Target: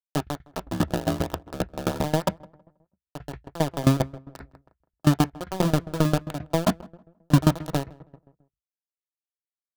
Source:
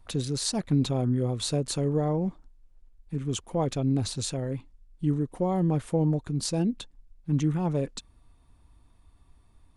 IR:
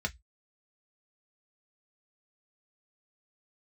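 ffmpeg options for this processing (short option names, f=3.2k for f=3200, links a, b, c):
-filter_complex "[0:a]highshelf=f=3.8k:g=-8.5,bandreject=f=60:t=h:w=6,bandreject=f=120:t=h:w=6,bandreject=f=180:t=h:w=6,acrossover=split=510[a][b];[b]acompressor=threshold=-52dB:ratio=4[c];[a][c]amix=inputs=2:normalize=0,acrusher=bits=3:mix=0:aa=0.000001,asettb=1/sr,asplit=3[d][e][f];[d]atrim=end=0.484[g];[e]atrim=start=0.48:end=2.04,asetpts=PTS-STARTPTS,afade=t=in:d=0.004:c=qsin,afade=t=out:st=1.556:d=0.004:c=qsin,aeval=exprs='val(0)*sin(2*PI*38*n/s)':c=same[h];[f]atrim=start=2.036[i];[g][h]acrossfade=d=0.004:c1=hsin:c2=qsin[j];[j][i]acrossfade=d=0.004:c1=qsin:c2=hsin,asplit=2[k][l];[l]adelay=161,lowpass=f=1.5k:p=1,volume=-18dB,asplit=2[m][n];[n]adelay=161,lowpass=f=1.5k:p=1,volume=0.43,asplit=2[o][p];[p]adelay=161,lowpass=f=1.5k:p=1,volume=0.43,asplit=2[q][r];[r]adelay=161,lowpass=f=1.5k:p=1,volume=0.43[s];[k][m][o][q][s]amix=inputs=5:normalize=0,asplit=2[t][u];[1:a]atrim=start_sample=2205,lowpass=2.6k[v];[u][v]afir=irnorm=-1:irlink=0,volume=-6dB[w];[t][w]amix=inputs=2:normalize=0,aeval=exprs='val(0)*pow(10,-21*if(lt(mod(7.5*n/s,1),2*abs(7.5)/1000),1-mod(7.5*n/s,1)/(2*abs(7.5)/1000),(mod(7.5*n/s,1)-2*abs(7.5)/1000)/(1-2*abs(7.5)/1000))/20)':c=same,volume=6dB"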